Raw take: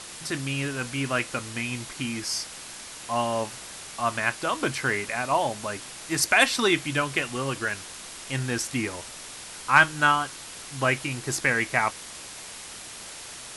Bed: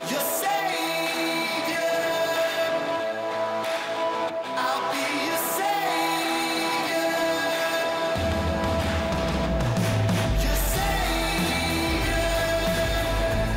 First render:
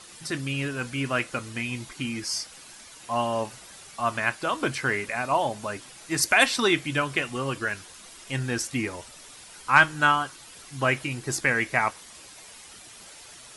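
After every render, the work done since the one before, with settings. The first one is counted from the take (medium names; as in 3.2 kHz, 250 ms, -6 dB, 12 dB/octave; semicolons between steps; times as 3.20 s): noise reduction 9 dB, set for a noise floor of -41 dBFS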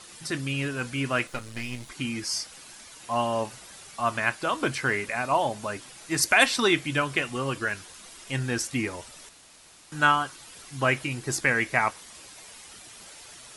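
1.27–1.89 s: partial rectifier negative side -12 dB; 9.29–9.92 s: room tone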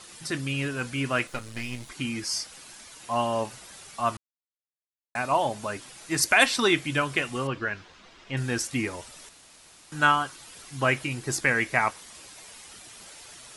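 4.17–5.15 s: mute; 7.47–8.37 s: distance through air 190 m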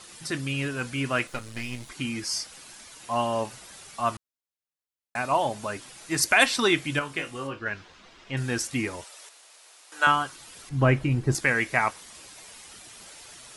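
6.99–7.66 s: feedback comb 55 Hz, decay 0.19 s, mix 90%; 9.04–10.07 s: high-pass 440 Hz 24 dB/octave; 10.69–11.35 s: tilt EQ -3.5 dB/octave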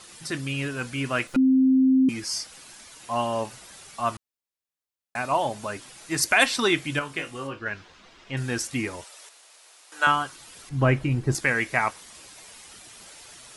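1.36–2.09 s: bleep 262 Hz -15 dBFS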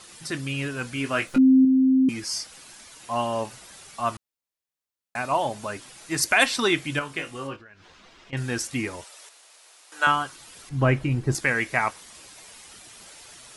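0.94–1.65 s: doubling 19 ms -6.5 dB; 7.56–8.33 s: compression 8:1, threshold -46 dBFS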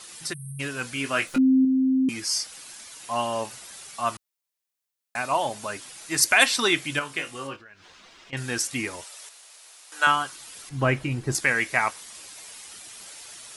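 0.33–0.60 s: spectral selection erased 210–8300 Hz; tilt EQ +1.5 dB/octave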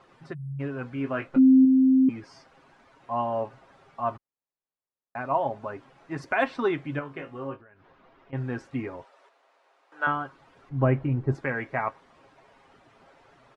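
low-pass 1 kHz 12 dB/octave; comb 7.4 ms, depth 38%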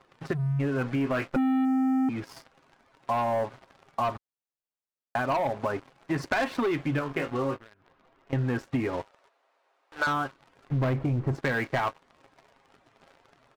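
waveshaping leveller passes 3; compression, threshold -25 dBFS, peak gain reduction 11 dB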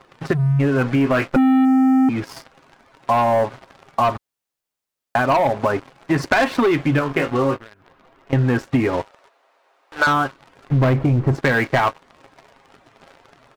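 trim +10 dB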